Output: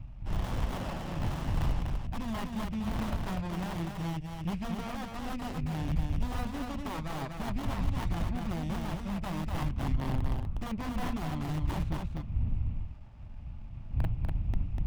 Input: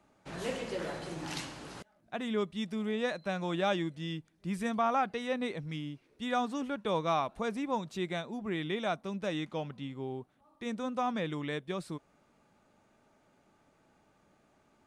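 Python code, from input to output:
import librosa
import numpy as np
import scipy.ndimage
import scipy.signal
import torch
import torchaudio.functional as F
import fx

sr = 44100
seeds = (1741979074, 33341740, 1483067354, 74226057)

y = fx.dmg_wind(x, sr, seeds[0], corner_hz=96.0, level_db=-42.0)
y = scipy.signal.sosfilt(scipy.signal.butter(4, 6300.0, 'lowpass', fs=sr, output='sos'), y)
y = fx.peak_eq(y, sr, hz=2600.0, db=14.0, octaves=0.88)
y = fx.rider(y, sr, range_db=4, speed_s=0.5)
y = (np.mod(10.0 ** (26.0 / 20.0) * y + 1.0, 2.0) - 1.0) / 10.0 ** (26.0 / 20.0)
y = fx.tilt_eq(y, sr, slope=-2.0)
y = fx.fixed_phaser(y, sr, hz=1600.0, stages=6)
y = y + 10.0 ** (-4.0 / 20.0) * np.pad(y, (int(245 * sr / 1000.0), 0))[:len(y)]
y = fx.running_max(y, sr, window=17)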